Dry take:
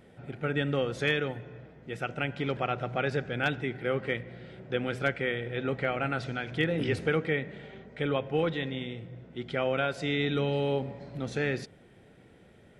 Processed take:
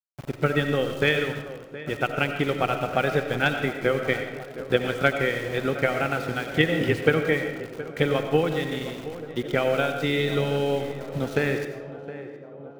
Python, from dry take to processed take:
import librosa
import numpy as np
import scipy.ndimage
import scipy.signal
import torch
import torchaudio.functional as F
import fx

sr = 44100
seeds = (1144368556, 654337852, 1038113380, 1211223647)

y = fx.transient(x, sr, attack_db=8, sustain_db=-4)
y = np.where(np.abs(y) >= 10.0 ** (-40.0 / 20.0), y, 0.0)
y = fx.echo_tape(y, sr, ms=717, feedback_pct=81, wet_db=-13, lp_hz=1400.0, drive_db=7.0, wow_cents=22)
y = fx.rev_freeverb(y, sr, rt60_s=0.98, hf_ratio=0.7, predelay_ms=50, drr_db=6.5)
y = y * librosa.db_to_amplitude(2.5)